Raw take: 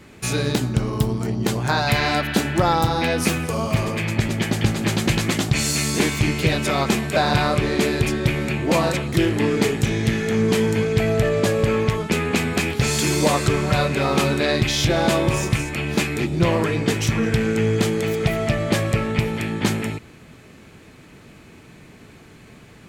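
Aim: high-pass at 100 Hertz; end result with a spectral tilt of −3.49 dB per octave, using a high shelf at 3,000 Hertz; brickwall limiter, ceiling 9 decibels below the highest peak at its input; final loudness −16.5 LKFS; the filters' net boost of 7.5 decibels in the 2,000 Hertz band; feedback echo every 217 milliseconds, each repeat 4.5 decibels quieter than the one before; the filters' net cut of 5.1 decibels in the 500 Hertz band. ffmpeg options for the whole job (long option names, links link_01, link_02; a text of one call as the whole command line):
ffmpeg -i in.wav -af "highpass=100,equalizer=frequency=500:width_type=o:gain=-7,equalizer=frequency=2000:width_type=o:gain=7.5,highshelf=frequency=3000:gain=5.5,alimiter=limit=-11.5dB:level=0:latency=1,aecho=1:1:217|434|651|868|1085|1302|1519|1736|1953:0.596|0.357|0.214|0.129|0.0772|0.0463|0.0278|0.0167|0.01,volume=3dB" out.wav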